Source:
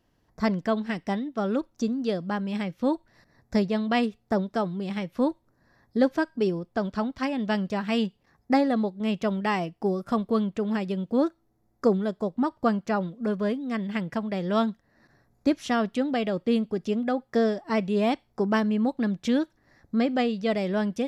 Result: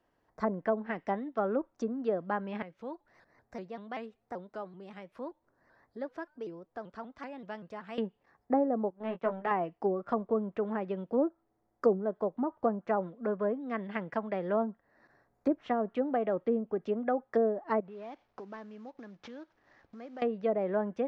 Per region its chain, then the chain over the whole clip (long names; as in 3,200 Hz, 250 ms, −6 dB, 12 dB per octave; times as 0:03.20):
0:02.62–0:07.98: downward compressor 1.5 to 1, threshold −55 dBFS + pitch modulation by a square or saw wave saw up 5.2 Hz, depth 160 cents
0:08.90–0:09.51: low-pass filter 2,100 Hz 6 dB per octave + power curve on the samples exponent 1.4 + double-tracking delay 17 ms −6.5 dB
0:17.80–0:20.22: variable-slope delta modulation 32 kbit/s + downward compressor 5 to 1, threshold −39 dBFS
whole clip: treble cut that deepens with the level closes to 640 Hz, closed at −20 dBFS; three-way crossover with the lows and the highs turned down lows −12 dB, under 350 Hz, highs −12 dB, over 2,200 Hz